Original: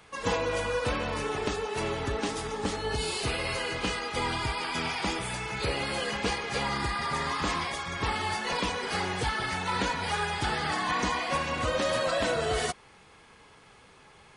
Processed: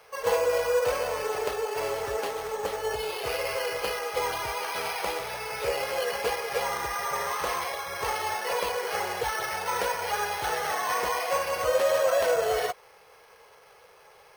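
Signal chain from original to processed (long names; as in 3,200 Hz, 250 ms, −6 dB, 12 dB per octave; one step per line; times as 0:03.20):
bad sample-rate conversion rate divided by 6×, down filtered, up hold
low shelf with overshoot 360 Hz −10.5 dB, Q 3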